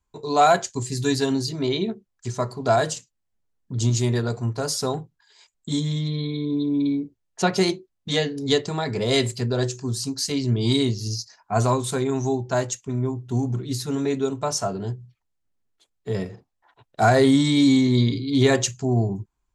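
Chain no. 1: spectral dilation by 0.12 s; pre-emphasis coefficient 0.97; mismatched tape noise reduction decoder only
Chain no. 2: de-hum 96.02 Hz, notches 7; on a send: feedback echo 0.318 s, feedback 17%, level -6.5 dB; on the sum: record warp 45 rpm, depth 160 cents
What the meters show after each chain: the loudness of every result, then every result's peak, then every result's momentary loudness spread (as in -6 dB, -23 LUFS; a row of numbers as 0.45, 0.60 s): -27.5, -23.0 LUFS; -8.5, -5.0 dBFS; 19, 13 LU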